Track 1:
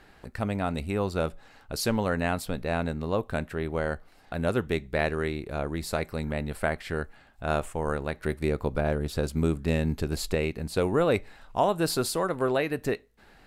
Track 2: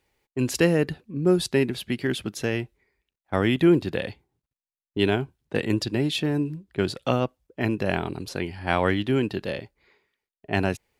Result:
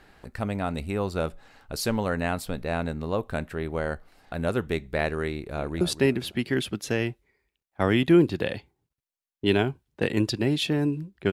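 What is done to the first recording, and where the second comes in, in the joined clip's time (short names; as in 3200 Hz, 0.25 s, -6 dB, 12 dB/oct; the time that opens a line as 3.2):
track 1
5.32–5.81 echo throw 0.25 s, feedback 35%, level -11.5 dB
5.81 switch to track 2 from 1.34 s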